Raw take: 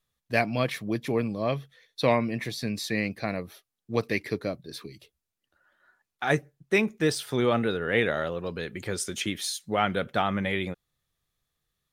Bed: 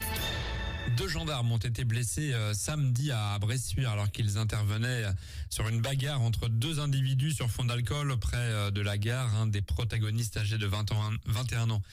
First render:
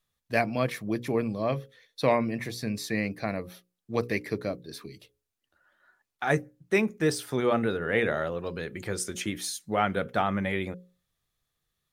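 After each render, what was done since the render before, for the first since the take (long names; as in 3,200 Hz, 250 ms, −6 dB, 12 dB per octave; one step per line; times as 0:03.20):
mains-hum notches 60/120/180/240/300/360/420/480/540 Hz
dynamic equaliser 3,400 Hz, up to −6 dB, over −47 dBFS, Q 1.4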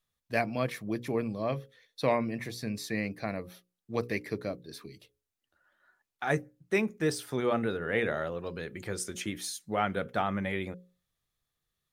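level −3.5 dB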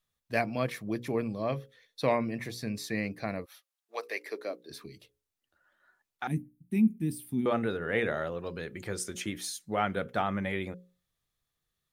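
0:03.44–0:04.69: high-pass filter 1,000 Hz → 260 Hz 24 dB per octave
0:06.27–0:07.46: drawn EQ curve 140 Hz 0 dB, 230 Hz +10 dB, 340 Hz −4 dB, 520 Hz −28 dB, 840 Hz −17 dB, 1,400 Hz −29 dB, 2,400 Hz −11 dB, 6,600 Hz −18 dB, 9,900 Hz +2 dB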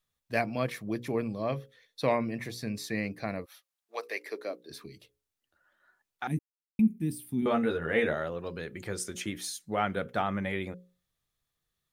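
0:06.39–0:06.79: silence
0:07.41–0:08.14: double-tracking delay 13 ms −3.5 dB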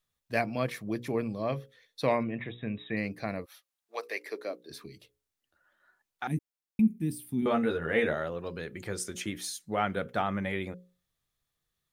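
0:02.23–0:02.97: linear-phase brick-wall low-pass 3,900 Hz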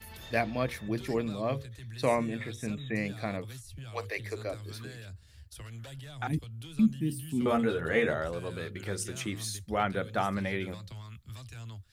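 mix in bed −14 dB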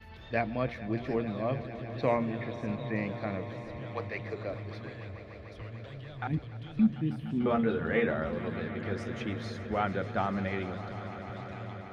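high-frequency loss of the air 250 metres
on a send: echo that builds up and dies away 148 ms, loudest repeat 5, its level −17 dB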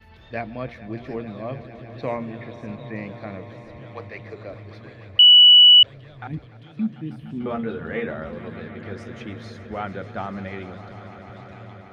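0:05.19–0:05.83: beep over 2,950 Hz −6.5 dBFS
0:06.46–0:07.12: high-pass filter 130 Hz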